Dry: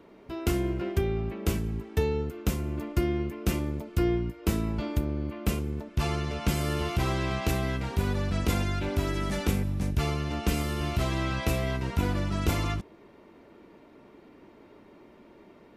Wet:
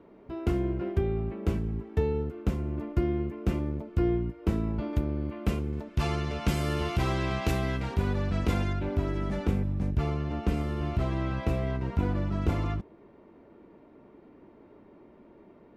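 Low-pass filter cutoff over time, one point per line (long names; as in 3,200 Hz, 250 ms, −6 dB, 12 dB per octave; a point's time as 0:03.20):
low-pass filter 6 dB per octave
1,100 Hz
from 0:04.93 2,300 Hz
from 0:05.73 5,200 Hz
from 0:07.94 2,400 Hz
from 0:08.73 1,000 Hz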